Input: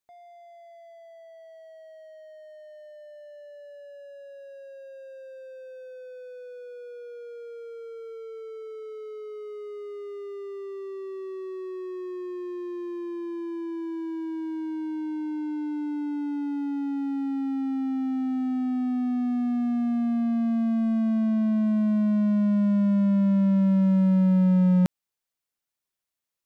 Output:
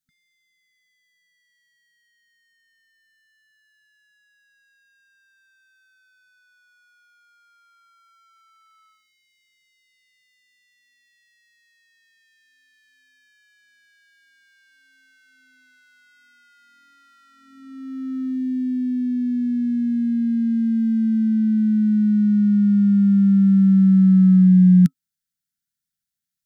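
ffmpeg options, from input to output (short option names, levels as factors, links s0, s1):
-af "equalizer=f=160:t=o:w=0.67:g=8,equalizer=f=1000:t=o:w=0.67:g=-4,equalizer=f=2500:t=o:w=0.67:g=-8,afftfilt=real='re*(1-between(b*sr/4096,260,1300))':imag='im*(1-between(b*sr/4096,260,1300))':win_size=4096:overlap=0.75,volume=1.26"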